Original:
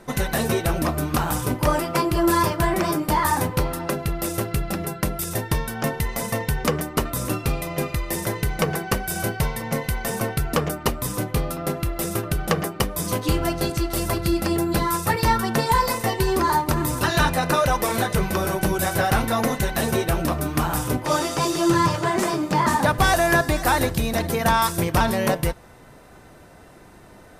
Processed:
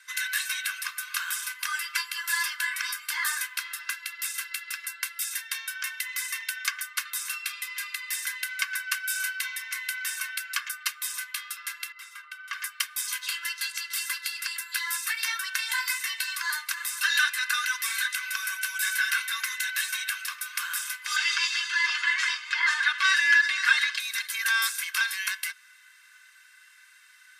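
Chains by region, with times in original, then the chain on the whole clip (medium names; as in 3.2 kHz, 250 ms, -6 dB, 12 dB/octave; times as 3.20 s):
11.92–12.53 s: low-pass 1.2 kHz 6 dB/octave + comb of notches 850 Hz
21.16–24.00 s: low-pass 4 kHz + comb 6.3 ms, depth 77% + level flattener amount 50%
whole clip: steep high-pass 1.4 kHz 48 dB/octave; treble shelf 8.9 kHz -6 dB; comb 1.9 ms, depth 73%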